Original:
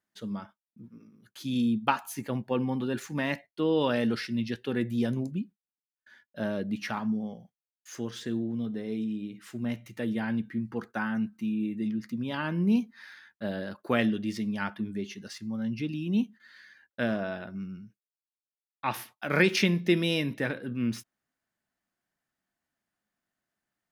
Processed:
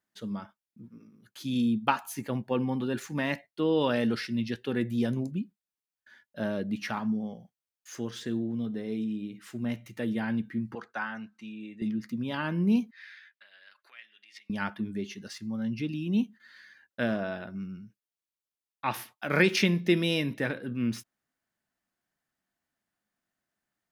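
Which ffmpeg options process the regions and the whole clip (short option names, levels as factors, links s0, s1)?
-filter_complex "[0:a]asettb=1/sr,asplit=3[s0][s1][s2];[s0]atrim=end=10.754[s3];[s1]atrim=start=10.75:end=11.82,asetpts=PTS-STARTPTS,afade=t=in:d=0.004:c=qsin,afade=t=out:st=1.066:d=0.004:c=qsin,highpass=51,acrossover=split=520 7800:gain=0.224 1 0.0794[s4][s5][s6];[s4][s5][s6]amix=inputs=3:normalize=0[s7];[s2]atrim=start=11.816[s8];[s3][s7]acrossfade=d=0.004:c1=hsin:c2=qsin[s9];[s9][s8]acrossfade=d=0.004:c1=qsin:c2=hsin,asettb=1/sr,asplit=3[s10][s11][s12];[s10]atrim=end=12.914[s13];[s11]atrim=start=12.91:end=14.5,asetpts=PTS-STARTPTS,afade=t=in:d=0.004:c=qsin,afade=t=out:st=1.586:d=0.004:c=qsin,aemphasis=mode=reproduction:type=50kf,acompressor=threshold=0.0112:ratio=12:attack=3.2:release=140:knee=1:detection=peak,highpass=f=2200:t=q:w=1.9[s14];[s12]atrim=start=14.496[s15];[s13][s14]acrossfade=d=0.004:c1=hsin:c2=qsin[s16];[s16][s15]acrossfade=d=0.004:c1=qsin:c2=hsin"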